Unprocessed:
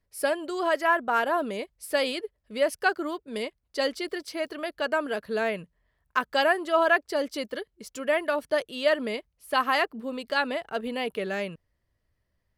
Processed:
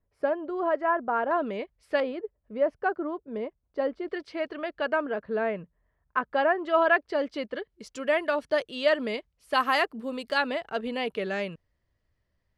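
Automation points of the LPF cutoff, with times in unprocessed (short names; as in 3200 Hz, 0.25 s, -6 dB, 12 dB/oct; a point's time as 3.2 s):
1200 Hz
from 1.31 s 2500 Hz
from 2 s 1100 Hz
from 4.08 s 2700 Hz
from 5.01 s 1600 Hz
from 6.64 s 2900 Hz
from 7.7 s 6200 Hz
from 9.53 s 12000 Hz
from 10.38 s 6300 Hz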